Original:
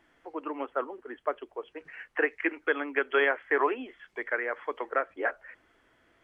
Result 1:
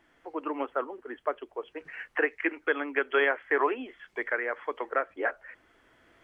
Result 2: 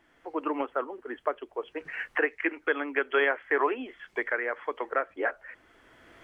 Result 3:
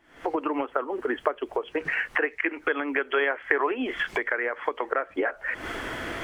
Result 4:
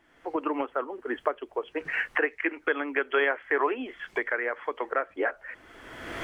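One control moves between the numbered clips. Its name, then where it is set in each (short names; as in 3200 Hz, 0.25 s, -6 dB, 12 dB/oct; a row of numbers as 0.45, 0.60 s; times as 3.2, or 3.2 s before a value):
recorder AGC, rising by: 5.1, 13, 90, 33 dB/s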